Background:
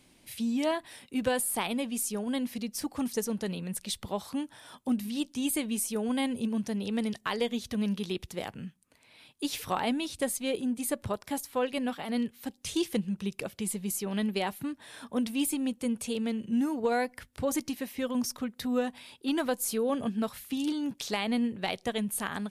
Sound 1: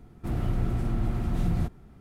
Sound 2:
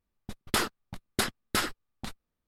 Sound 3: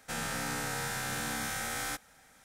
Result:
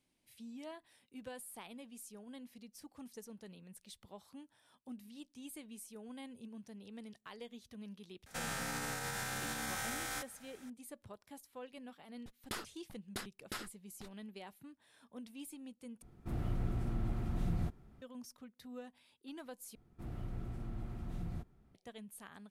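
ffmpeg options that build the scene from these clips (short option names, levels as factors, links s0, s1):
-filter_complex "[1:a]asplit=2[s0][s1];[0:a]volume=0.106[s2];[3:a]alimiter=level_in=2:limit=0.0631:level=0:latency=1:release=100,volume=0.501[s3];[s2]asplit=3[s4][s5][s6];[s4]atrim=end=16.024[s7];[s0]atrim=end=2,asetpts=PTS-STARTPTS,volume=0.355[s8];[s5]atrim=start=18.016:end=19.754[s9];[s1]atrim=end=2,asetpts=PTS-STARTPTS,volume=0.168[s10];[s6]atrim=start=21.746[s11];[s3]atrim=end=2.44,asetpts=PTS-STARTPTS,volume=0.944,afade=t=in:d=0.004:c=hsin,afade=t=out:st=2.436:d=0.004:c=hsin,adelay=364266S[s12];[2:a]atrim=end=2.47,asetpts=PTS-STARTPTS,volume=0.168,afade=t=in:d=0.004:c=hsin,afade=t=out:st=2.466:d=0.004:c=hsin,adelay=11970[s13];[s7][s8]acrossfade=d=0.004:c1=hsin:c2=hsin[s14];[s14][s9]acrossfade=d=0.004:c1=hsin:c2=hsin[s15];[s15][s10]acrossfade=d=0.004:c1=hsin:c2=hsin[s16];[s16][s11]acrossfade=d=0.004:c1=hsin:c2=hsin[s17];[s17][s12][s13]amix=inputs=3:normalize=0"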